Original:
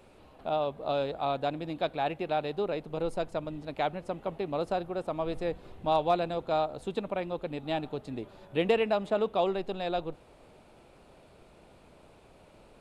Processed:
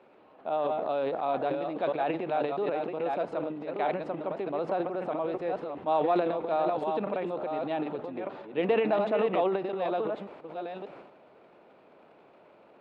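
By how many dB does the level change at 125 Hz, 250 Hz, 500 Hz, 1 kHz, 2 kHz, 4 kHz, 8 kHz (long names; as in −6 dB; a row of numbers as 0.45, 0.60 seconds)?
−3.5 dB, +2.0 dB, +2.0 dB, +1.5 dB, 0.0 dB, −6.0 dB, can't be measured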